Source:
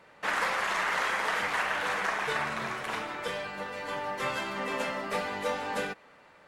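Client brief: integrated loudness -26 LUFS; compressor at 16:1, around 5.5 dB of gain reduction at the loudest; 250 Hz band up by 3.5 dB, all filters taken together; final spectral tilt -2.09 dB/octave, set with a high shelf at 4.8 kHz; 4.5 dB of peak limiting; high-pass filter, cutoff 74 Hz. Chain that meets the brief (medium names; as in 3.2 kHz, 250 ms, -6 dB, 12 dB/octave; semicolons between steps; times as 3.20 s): high-pass 74 Hz; peaking EQ 250 Hz +4.5 dB; treble shelf 4.8 kHz -8.5 dB; compression 16:1, threshold -31 dBFS; trim +10.5 dB; peak limiter -16.5 dBFS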